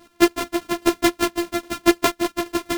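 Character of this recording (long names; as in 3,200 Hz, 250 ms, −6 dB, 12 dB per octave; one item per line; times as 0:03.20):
a buzz of ramps at a fixed pitch in blocks of 128 samples
chopped level 4.9 Hz, depth 65%, duty 30%
a shimmering, thickened sound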